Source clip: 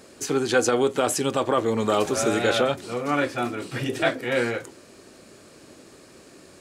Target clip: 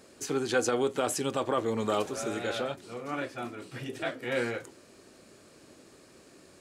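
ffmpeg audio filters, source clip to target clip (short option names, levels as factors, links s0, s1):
-filter_complex "[0:a]asplit=3[s0][s1][s2];[s0]afade=t=out:st=2.01:d=0.02[s3];[s1]flanger=delay=4.6:depth=8:regen=-73:speed=1.8:shape=sinusoidal,afade=t=in:st=2.01:d=0.02,afade=t=out:st=4.21:d=0.02[s4];[s2]afade=t=in:st=4.21:d=0.02[s5];[s3][s4][s5]amix=inputs=3:normalize=0,volume=0.473"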